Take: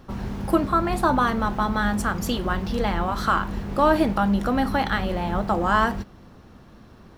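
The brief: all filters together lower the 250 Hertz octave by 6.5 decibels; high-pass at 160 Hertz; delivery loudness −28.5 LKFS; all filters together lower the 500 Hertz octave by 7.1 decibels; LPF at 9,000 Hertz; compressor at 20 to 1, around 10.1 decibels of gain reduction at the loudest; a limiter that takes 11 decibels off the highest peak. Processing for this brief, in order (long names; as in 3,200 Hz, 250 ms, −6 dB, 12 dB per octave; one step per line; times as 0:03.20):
high-pass filter 160 Hz
low-pass filter 9,000 Hz
parametric band 250 Hz −5 dB
parametric band 500 Hz −8.5 dB
downward compressor 20 to 1, threshold −27 dBFS
level +7.5 dB
brickwall limiter −19 dBFS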